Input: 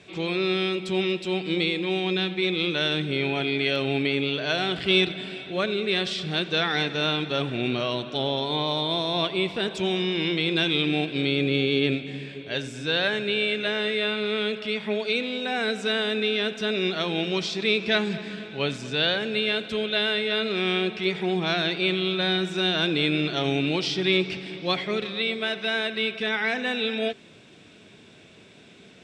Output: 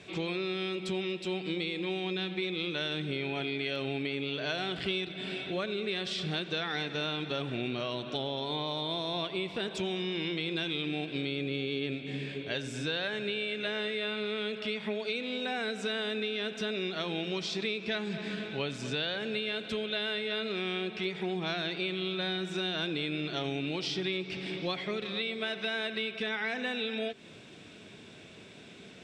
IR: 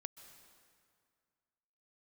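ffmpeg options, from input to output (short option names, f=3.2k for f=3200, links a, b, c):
-af "acompressor=threshold=-31dB:ratio=5"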